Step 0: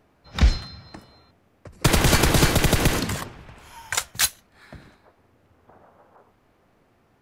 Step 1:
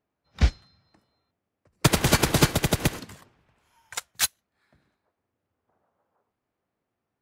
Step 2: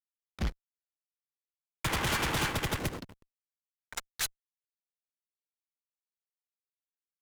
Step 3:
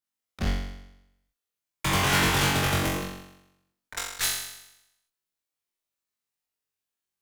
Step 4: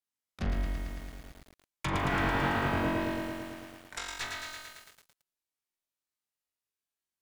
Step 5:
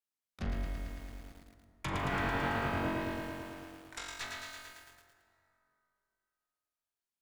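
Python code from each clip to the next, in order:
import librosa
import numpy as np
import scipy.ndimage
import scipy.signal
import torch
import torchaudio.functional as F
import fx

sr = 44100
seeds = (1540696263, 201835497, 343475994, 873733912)

y1 = fx.highpass(x, sr, hz=72.0, slope=6)
y1 = fx.upward_expand(y1, sr, threshold_db=-29.0, expansion=2.5)
y1 = F.gain(torch.from_numpy(y1), 1.5).numpy()
y2 = fx.spec_box(y1, sr, start_s=0.45, length_s=2.34, low_hz=790.0, high_hz=3600.0, gain_db=6)
y2 = fx.backlash(y2, sr, play_db=-32.0)
y2 = fx.tube_stage(y2, sr, drive_db=27.0, bias=0.35)
y3 = fx.room_flutter(y2, sr, wall_m=3.7, rt60_s=0.85)
y3 = F.gain(torch.from_numpy(y3), 2.5).numpy()
y4 = fx.env_lowpass_down(y3, sr, base_hz=1600.0, full_db=-23.0)
y4 = fx.doubler(y4, sr, ms=40.0, db=-12.0)
y4 = fx.echo_crushed(y4, sr, ms=111, feedback_pct=80, bits=8, wet_db=-3.5)
y4 = F.gain(torch.from_numpy(y4), -5.0).numpy()
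y5 = fx.rev_plate(y4, sr, seeds[0], rt60_s=3.0, hf_ratio=0.55, predelay_ms=0, drr_db=10.5)
y5 = F.gain(torch.from_numpy(y5), -4.5).numpy()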